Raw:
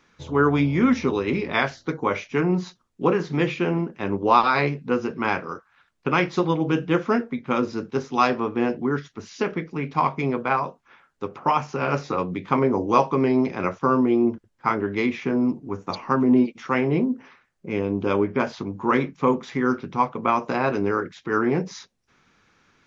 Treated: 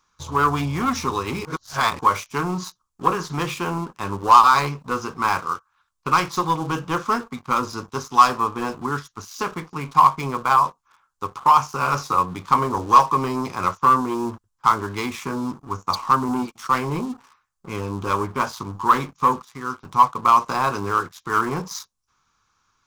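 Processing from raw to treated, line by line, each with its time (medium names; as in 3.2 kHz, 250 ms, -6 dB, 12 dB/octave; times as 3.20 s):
1.45–1.99 s: reverse
18.93–20.34 s: dip -8 dB, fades 0.49 s logarithmic
whole clip: bass shelf 94 Hz +9.5 dB; waveshaping leveller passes 2; FFT filter 100 Hz 0 dB, 220 Hz -6 dB, 630 Hz -4 dB, 1.1 kHz +13 dB, 1.9 kHz -3 dB, 7.2 kHz +14 dB; trim -8 dB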